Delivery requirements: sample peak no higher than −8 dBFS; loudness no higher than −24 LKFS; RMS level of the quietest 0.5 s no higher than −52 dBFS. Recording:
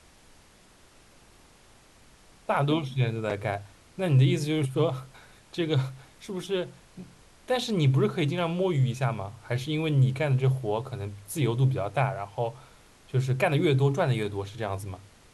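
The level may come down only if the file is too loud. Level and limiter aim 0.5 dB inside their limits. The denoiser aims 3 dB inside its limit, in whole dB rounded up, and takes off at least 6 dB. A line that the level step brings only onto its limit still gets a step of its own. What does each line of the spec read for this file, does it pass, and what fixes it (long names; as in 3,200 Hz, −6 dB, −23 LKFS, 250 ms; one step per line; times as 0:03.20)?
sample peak −11.5 dBFS: in spec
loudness −27.5 LKFS: in spec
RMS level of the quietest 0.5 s −56 dBFS: in spec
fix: no processing needed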